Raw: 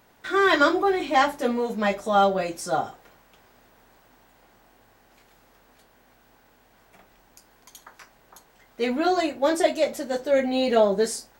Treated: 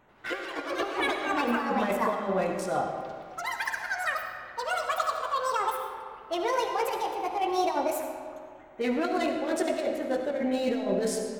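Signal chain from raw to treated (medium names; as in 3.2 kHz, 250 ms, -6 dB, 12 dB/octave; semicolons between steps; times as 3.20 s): local Wiener filter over 9 samples; ever faster or slower copies 89 ms, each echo +6 st, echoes 3; de-hum 54.67 Hz, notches 14; compressor with a negative ratio -24 dBFS, ratio -0.5; algorithmic reverb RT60 2.2 s, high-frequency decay 0.65×, pre-delay 30 ms, DRR 4 dB; trim -4 dB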